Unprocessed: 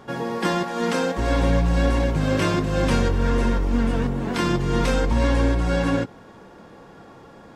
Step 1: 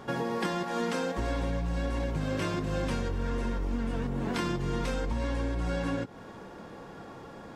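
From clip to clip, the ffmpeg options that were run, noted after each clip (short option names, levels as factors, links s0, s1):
-af "acompressor=threshold=0.0398:ratio=6"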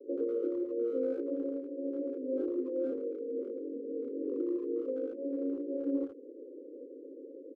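-filter_complex "[0:a]asuperpass=centerf=380:order=20:qfactor=1.3,asplit=2[s0][s1];[s1]adelay=80,highpass=300,lowpass=3400,asoftclip=type=hard:threshold=0.0188,volume=0.224[s2];[s0][s2]amix=inputs=2:normalize=0,volume=1.26"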